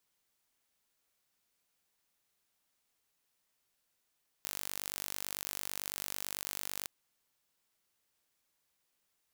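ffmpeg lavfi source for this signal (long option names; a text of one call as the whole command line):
ffmpeg -f lavfi -i "aevalsrc='0.266*eq(mod(n,900),0)':duration=2.42:sample_rate=44100" out.wav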